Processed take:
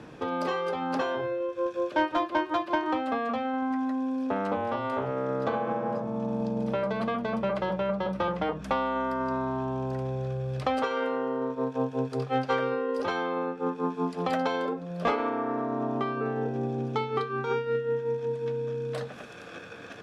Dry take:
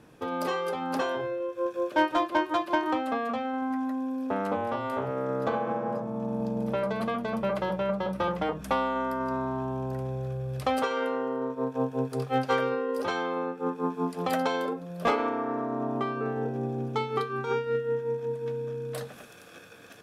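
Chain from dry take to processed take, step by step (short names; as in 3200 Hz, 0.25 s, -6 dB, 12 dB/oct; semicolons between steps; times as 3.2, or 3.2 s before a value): LPF 5800 Hz 12 dB/oct; three-band squash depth 40%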